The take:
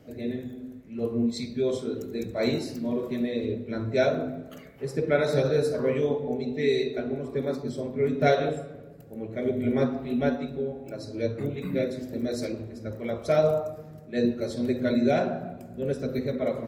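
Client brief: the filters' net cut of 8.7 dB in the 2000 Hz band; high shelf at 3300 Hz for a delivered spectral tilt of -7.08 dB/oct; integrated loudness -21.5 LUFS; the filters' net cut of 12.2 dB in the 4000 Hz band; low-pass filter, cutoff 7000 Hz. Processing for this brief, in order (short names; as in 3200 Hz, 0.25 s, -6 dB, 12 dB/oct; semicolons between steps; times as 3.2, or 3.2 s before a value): LPF 7000 Hz; bell 2000 Hz -8.5 dB; high shelf 3300 Hz -8.5 dB; bell 4000 Hz -5.5 dB; gain +7 dB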